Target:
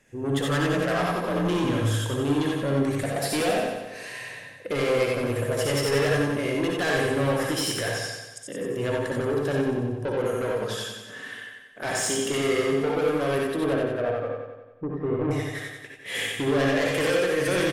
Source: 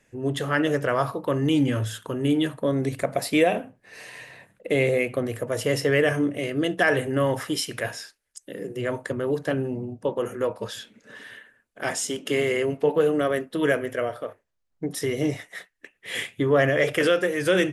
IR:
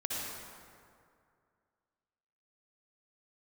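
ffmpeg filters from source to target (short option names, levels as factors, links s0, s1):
-filter_complex "[0:a]asettb=1/sr,asplit=3[s0][s1][s2];[s0]atrim=end=0.734[s3];[s1]atrim=start=0.73:end=1.64,asetpts=PTS-STARTPTS,afade=t=in:d=0.004:c=qsin,afade=t=out:st=0.906:d=0.004:c=qsin,afreqshift=40[s4];[s2]atrim=start=1.636[s5];[s3][s4]acrossfade=d=0.004:c1=hsin:c2=qsin[s6];[s6][s5]acrossfade=d=0.004:c1=qsin:c2=hsin,asettb=1/sr,asplit=3[s7][s8][s9];[s7]atrim=end=13.644[s10];[s8]atrim=start=13.64:end=15.31,asetpts=PTS-STARTPTS,afade=t=in:d=0.004:c=qsin,afade=t=out:st=1.666:d=0.004:c=qsin,lowpass=f=1300:w=0.5412,lowpass=f=1300:w=1.3066[s11];[s9]atrim=start=15.306[s12];[s10][s11]acrossfade=d=0.004:c1=hsin:c2=qsin[s13];[s13][s12]acrossfade=d=0.004:c1=qsin:c2=hsin,asoftclip=type=tanh:threshold=0.0562,aecho=1:1:92|184|276|368|460|552|644|736:0.562|0.321|0.183|0.104|0.0594|0.0338|0.0193|0.011[s14];[1:a]atrim=start_sample=2205,atrim=end_sample=3969[s15];[s14][s15]afir=irnorm=-1:irlink=0,volume=1.5" -ar 48000 -c:a libmp3lame -b:a 96k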